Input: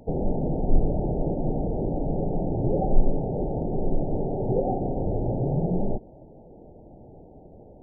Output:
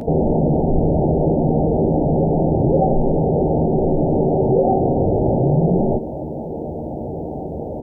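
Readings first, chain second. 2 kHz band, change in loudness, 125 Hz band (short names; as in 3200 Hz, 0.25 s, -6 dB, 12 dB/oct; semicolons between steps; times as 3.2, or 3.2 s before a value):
n/a, +9.0 dB, +9.5 dB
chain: HPF 87 Hz 6 dB/oct; doubler 13 ms -7 dB; fast leveller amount 50%; gain +7.5 dB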